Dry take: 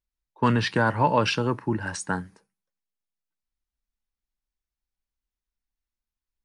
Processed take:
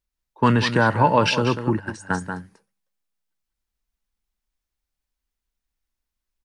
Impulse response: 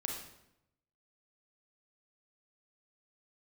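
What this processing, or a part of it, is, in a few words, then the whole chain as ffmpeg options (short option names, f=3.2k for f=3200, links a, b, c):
ducked delay: -filter_complex "[0:a]asplit=3[a][b][c];[b]adelay=191,volume=-3dB[d];[c]apad=whole_len=292703[e];[d][e]sidechaincompress=threshold=-26dB:ratio=8:attack=9.3:release=649[f];[a][f]amix=inputs=2:normalize=0,asplit=3[g][h][i];[g]afade=t=out:st=1.78:d=0.02[j];[h]agate=range=-13dB:threshold=-27dB:ratio=16:detection=peak,afade=t=in:st=1.78:d=0.02,afade=t=out:st=2.2:d=0.02[k];[i]afade=t=in:st=2.2:d=0.02[l];[j][k][l]amix=inputs=3:normalize=0,volume=4dB"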